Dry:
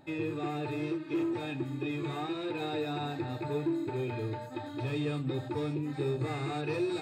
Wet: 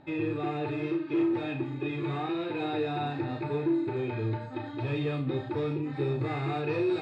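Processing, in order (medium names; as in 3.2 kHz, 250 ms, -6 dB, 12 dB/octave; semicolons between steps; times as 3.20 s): low-pass 3.5 kHz 12 dB/octave; flutter echo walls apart 6.1 m, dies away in 0.29 s; trim +2.5 dB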